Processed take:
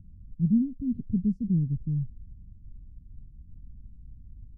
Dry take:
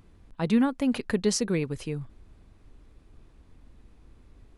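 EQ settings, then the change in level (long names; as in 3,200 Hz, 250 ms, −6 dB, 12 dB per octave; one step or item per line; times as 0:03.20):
inverse Chebyshev low-pass filter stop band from 650 Hz, stop band 60 dB
+7.5 dB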